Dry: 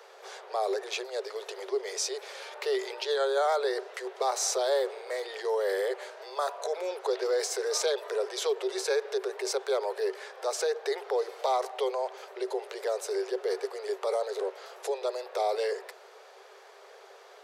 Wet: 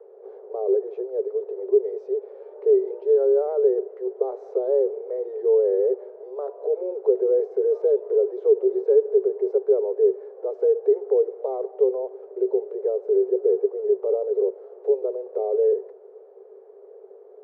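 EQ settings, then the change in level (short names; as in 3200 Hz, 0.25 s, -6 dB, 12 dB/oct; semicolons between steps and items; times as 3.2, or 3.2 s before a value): synth low-pass 430 Hz, resonance Q 4.2; 0.0 dB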